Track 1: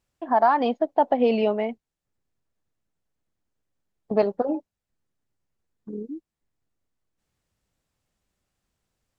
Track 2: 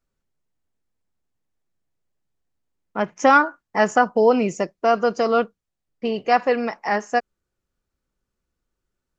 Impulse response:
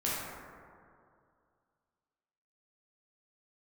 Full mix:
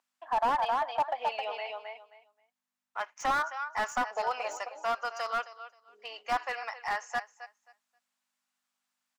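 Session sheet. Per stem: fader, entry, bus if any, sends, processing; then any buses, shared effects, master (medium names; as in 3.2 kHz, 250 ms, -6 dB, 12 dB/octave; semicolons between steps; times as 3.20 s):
-3.5 dB, 0.00 s, no send, echo send -3.5 dB, none
-6.0 dB, 0.00 s, no send, echo send -15 dB, hum 50 Hz, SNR 16 dB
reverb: none
echo: feedback delay 265 ms, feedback 19%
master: high-pass 820 Hz 24 dB/octave; slew-rate limiter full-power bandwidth 65 Hz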